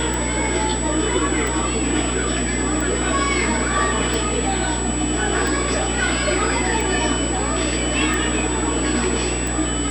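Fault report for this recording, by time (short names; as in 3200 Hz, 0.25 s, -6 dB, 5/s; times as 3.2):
buzz 60 Hz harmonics 17 -26 dBFS
tick 45 rpm -11 dBFS
tone 7900 Hz -26 dBFS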